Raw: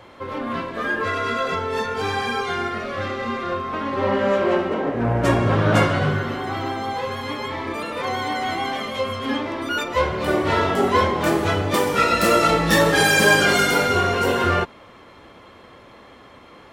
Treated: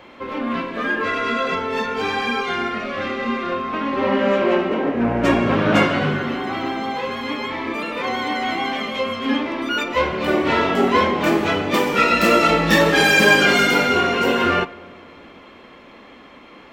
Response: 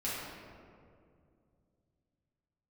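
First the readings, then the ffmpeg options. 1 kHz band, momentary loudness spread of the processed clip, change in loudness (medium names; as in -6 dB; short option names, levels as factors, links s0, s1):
+1.0 dB, 11 LU, +2.0 dB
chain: -filter_complex "[0:a]equalizer=f=100:t=o:w=0.67:g=-11,equalizer=f=250:t=o:w=0.67:g=6,equalizer=f=2500:t=o:w=0.67:g=6,equalizer=f=10000:t=o:w=0.67:g=-9,asplit=2[s0][s1];[1:a]atrim=start_sample=2205[s2];[s1][s2]afir=irnorm=-1:irlink=0,volume=0.075[s3];[s0][s3]amix=inputs=2:normalize=0"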